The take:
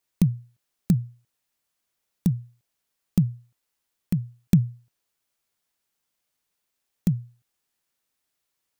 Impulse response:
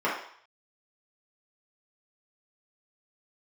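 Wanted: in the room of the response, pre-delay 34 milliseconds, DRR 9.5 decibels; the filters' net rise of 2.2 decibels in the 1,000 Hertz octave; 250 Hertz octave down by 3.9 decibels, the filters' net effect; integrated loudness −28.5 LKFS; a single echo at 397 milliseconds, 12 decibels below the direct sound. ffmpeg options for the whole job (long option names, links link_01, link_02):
-filter_complex "[0:a]equalizer=frequency=250:width_type=o:gain=-7.5,equalizer=frequency=1000:width_type=o:gain=3.5,aecho=1:1:397:0.251,asplit=2[link_01][link_02];[1:a]atrim=start_sample=2205,adelay=34[link_03];[link_02][link_03]afir=irnorm=-1:irlink=0,volume=-23dB[link_04];[link_01][link_04]amix=inputs=2:normalize=0,volume=2.5dB"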